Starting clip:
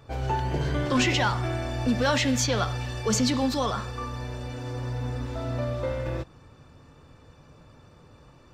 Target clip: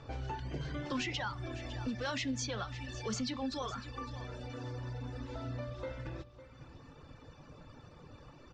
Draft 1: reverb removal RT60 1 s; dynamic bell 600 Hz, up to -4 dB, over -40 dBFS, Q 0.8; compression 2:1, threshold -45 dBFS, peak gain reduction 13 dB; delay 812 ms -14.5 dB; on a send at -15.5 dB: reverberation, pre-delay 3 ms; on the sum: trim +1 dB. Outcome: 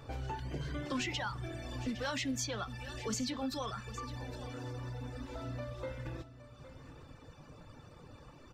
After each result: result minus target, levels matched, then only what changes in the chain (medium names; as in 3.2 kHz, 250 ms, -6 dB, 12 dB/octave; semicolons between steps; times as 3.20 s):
echo 257 ms late; 8 kHz band +2.5 dB
change: delay 555 ms -14.5 dB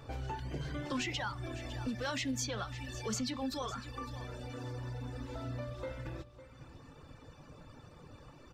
8 kHz band +2.5 dB
add after compression: low-pass 6.6 kHz 24 dB/octave